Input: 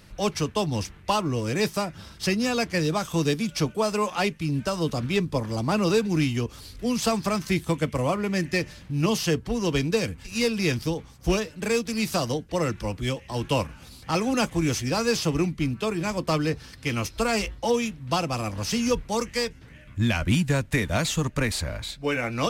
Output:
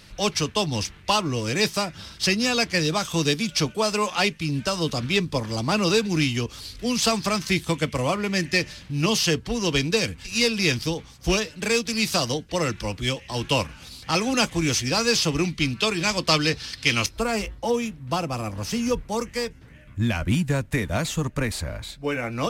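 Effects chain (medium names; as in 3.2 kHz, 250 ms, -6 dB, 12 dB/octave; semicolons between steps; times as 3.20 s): peaking EQ 4.1 kHz +8 dB 2.3 oct, from 15.45 s +14.5 dB, from 17.06 s -3 dB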